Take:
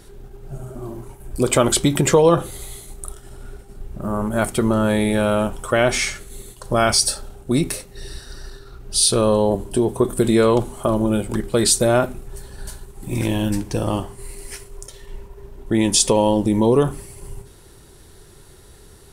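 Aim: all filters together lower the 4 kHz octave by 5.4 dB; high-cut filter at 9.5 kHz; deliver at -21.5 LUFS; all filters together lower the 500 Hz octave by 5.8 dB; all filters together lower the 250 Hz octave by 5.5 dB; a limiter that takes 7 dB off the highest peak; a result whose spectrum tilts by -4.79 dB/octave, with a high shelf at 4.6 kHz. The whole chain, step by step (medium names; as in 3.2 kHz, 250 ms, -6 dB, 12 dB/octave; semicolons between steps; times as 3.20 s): low-pass 9.5 kHz; peaking EQ 250 Hz -5.5 dB; peaking EQ 500 Hz -5.5 dB; peaking EQ 4 kHz -3.5 dB; treble shelf 4.6 kHz -5.5 dB; trim +4 dB; peak limiter -10 dBFS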